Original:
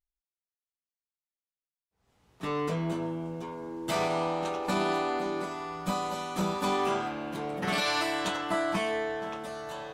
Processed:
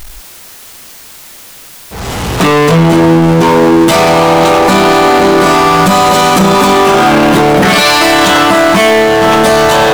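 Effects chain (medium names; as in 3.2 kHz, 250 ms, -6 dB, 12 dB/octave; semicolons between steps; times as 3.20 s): power-law waveshaper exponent 0.5; loudness maximiser +28 dB; trim -1 dB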